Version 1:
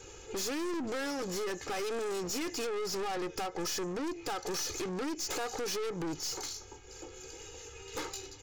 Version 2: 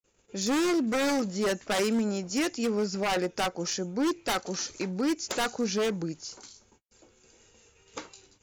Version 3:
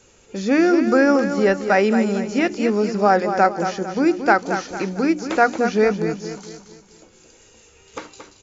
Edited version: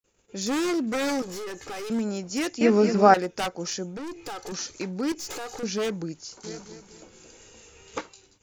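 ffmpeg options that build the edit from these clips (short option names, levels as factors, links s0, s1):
-filter_complex "[0:a]asplit=3[s0][s1][s2];[2:a]asplit=2[s3][s4];[1:a]asplit=6[s5][s6][s7][s8][s9][s10];[s5]atrim=end=1.222[s11];[s0]atrim=start=1.218:end=1.902[s12];[s6]atrim=start=1.898:end=2.612[s13];[s3]atrim=start=2.608:end=3.142[s14];[s7]atrim=start=3.138:end=3.972[s15];[s1]atrim=start=3.968:end=4.522[s16];[s8]atrim=start=4.518:end=5.122[s17];[s2]atrim=start=5.118:end=5.632[s18];[s9]atrim=start=5.628:end=6.442[s19];[s4]atrim=start=6.438:end=8.012[s20];[s10]atrim=start=8.008[s21];[s11][s12]acrossfade=d=0.004:c1=hsin:c2=hsin[s22];[s22][s13]acrossfade=d=0.004:c1=hsin:c2=hsin[s23];[s23][s14]acrossfade=d=0.004:c1=hsin:c2=hsin[s24];[s24][s15]acrossfade=d=0.004:c1=hsin:c2=hsin[s25];[s25][s16]acrossfade=d=0.004:c1=hsin:c2=hsin[s26];[s26][s17]acrossfade=d=0.004:c1=hsin:c2=hsin[s27];[s27][s18]acrossfade=d=0.004:c1=hsin:c2=hsin[s28];[s28][s19]acrossfade=d=0.004:c1=hsin:c2=hsin[s29];[s29][s20]acrossfade=d=0.004:c1=hsin:c2=hsin[s30];[s30][s21]acrossfade=d=0.004:c1=hsin:c2=hsin"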